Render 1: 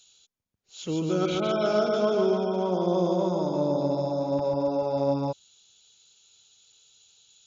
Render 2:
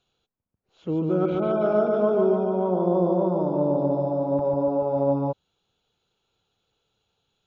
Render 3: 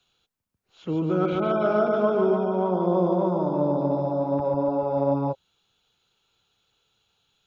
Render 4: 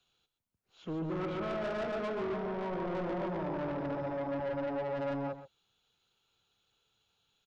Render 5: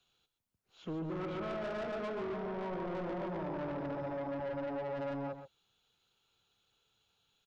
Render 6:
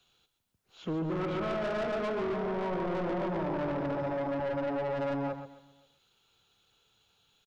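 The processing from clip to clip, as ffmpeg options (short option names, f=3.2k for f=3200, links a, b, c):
-af "lowpass=1.2k,volume=3dB"
-filter_complex "[0:a]acrossover=split=100|460|930[a][b][c][d];[c]flanger=delay=16.5:depth=5:speed=2.5[e];[d]acontrast=57[f];[a][b][e][f]amix=inputs=4:normalize=0"
-af "asoftclip=type=tanh:threshold=-26.5dB,aecho=1:1:126:0.237,volume=-6dB"
-af "acompressor=threshold=-36dB:ratio=6"
-filter_complex "[0:a]asplit=2[a][b];[b]aeval=exprs='clip(val(0),-1,0.00944)':c=same,volume=-9.5dB[c];[a][c]amix=inputs=2:normalize=0,aecho=1:1:262|524:0.1|0.028,volume=4dB"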